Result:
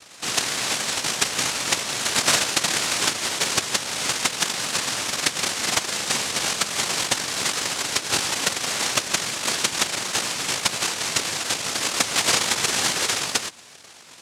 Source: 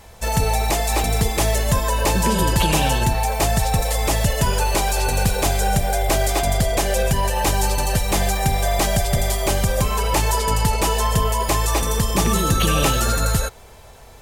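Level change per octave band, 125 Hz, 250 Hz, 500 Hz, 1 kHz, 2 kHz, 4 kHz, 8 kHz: -20.0, -10.0, -10.0, -8.0, +1.5, +4.5, +2.5 dB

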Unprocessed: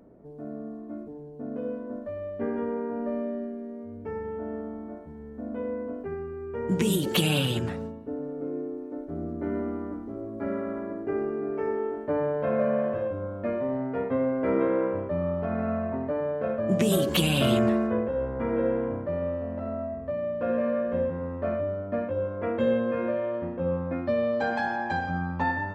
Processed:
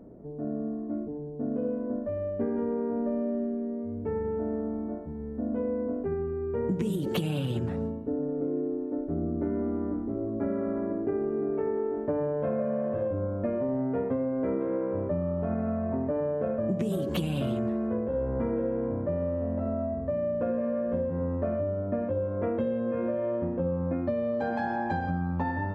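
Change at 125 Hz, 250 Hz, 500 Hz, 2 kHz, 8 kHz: -0.5 dB, 0.0 dB, -1.5 dB, -8.0 dB, under -15 dB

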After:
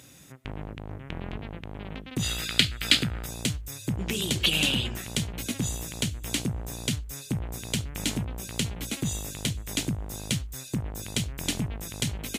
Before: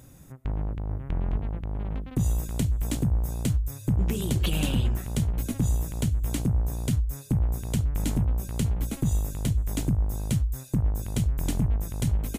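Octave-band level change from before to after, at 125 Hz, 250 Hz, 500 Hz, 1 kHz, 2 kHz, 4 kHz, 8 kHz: -7.0, -2.5, -0.5, +0.5, +11.5, +13.5, +6.0 dB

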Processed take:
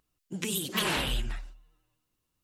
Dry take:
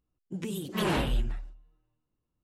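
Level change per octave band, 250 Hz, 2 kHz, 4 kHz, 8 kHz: -3.5, +4.0, +7.0, +10.0 dB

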